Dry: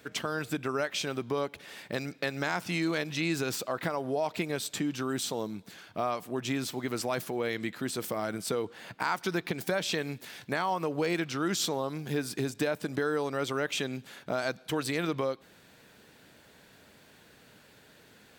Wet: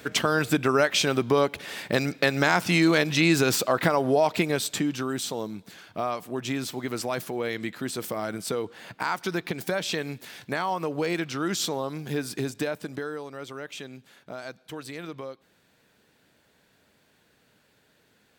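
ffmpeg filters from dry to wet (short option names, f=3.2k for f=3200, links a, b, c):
-af "volume=9.5dB,afade=t=out:st=4.07:d=1.08:silence=0.421697,afade=t=out:st=12.47:d=0.78:silence=0.354813"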